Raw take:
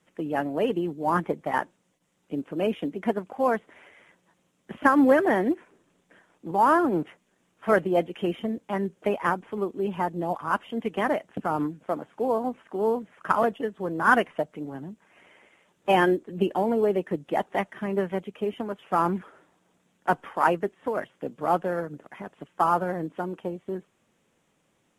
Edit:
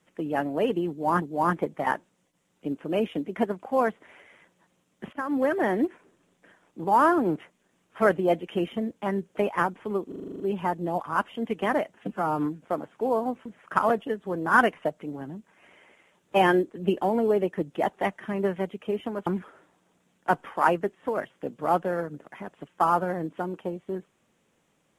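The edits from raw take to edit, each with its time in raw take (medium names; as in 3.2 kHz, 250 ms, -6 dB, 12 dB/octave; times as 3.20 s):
0.89–1.22 s: loop, 2 plays
4.80–5.52 s: fade in, from -17 dB
9.75 s: stutter 0.04 s, 9 plays
11.29–11.62 s: stretch 1.5×
12.64–12.99 s: delete
18.80–19.06 s: delete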